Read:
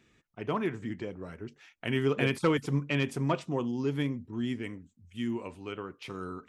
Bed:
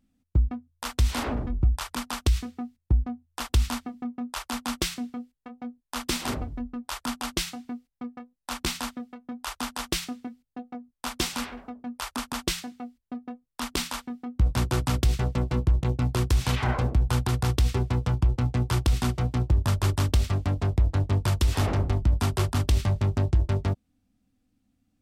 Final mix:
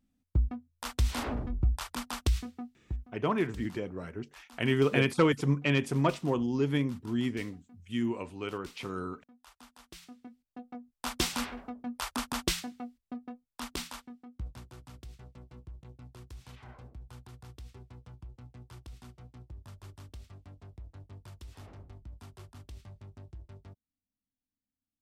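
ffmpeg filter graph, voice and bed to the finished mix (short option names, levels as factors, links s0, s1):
-filter_complex "[0:a]adelay=2750,volume=1.26[s0];[1:a]volume=6.31,afade=t=out:st=2.48:d=0.61:silence=0.125893,afade=t=in:st=9.93:d=1.27:silence=0.0891251,afade=t=out:st=12.58:d=2.06:silence=0.0707946[s1];[s0][s1]amix=inputs=2:normalize=0"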